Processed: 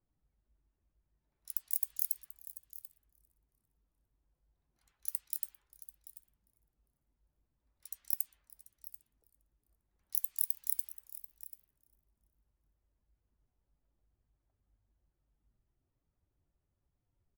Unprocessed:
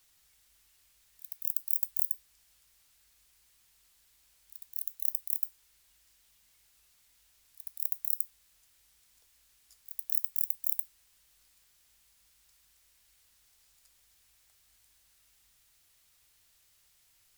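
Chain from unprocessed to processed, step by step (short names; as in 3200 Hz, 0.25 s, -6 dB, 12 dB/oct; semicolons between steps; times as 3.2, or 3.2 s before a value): per-bin expansion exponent 1.5; low-pass opened by the level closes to 400 Hz, open at -31 dBFS; on a send: echo 0.738 s -15.5 dB; on the sum: warbling echo 0.398 s, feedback 34%, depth 119 cents, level -22.5 dB; gain +5.5 dB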